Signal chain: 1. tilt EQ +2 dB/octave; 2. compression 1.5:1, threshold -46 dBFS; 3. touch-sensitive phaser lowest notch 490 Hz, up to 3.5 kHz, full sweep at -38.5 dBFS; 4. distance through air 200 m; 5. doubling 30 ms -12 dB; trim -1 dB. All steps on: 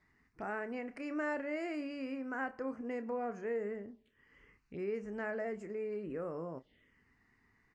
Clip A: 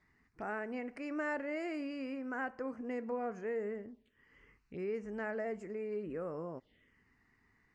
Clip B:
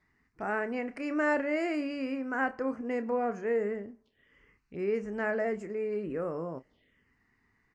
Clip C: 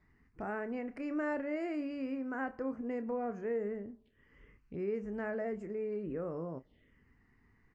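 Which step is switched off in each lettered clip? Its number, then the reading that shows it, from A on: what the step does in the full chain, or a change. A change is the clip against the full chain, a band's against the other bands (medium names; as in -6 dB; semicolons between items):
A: 5, momentary loudness spread change +2 LU; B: 2, mean gain reduction 6.5 dB; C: 1, 2 kHz band -4.0 dB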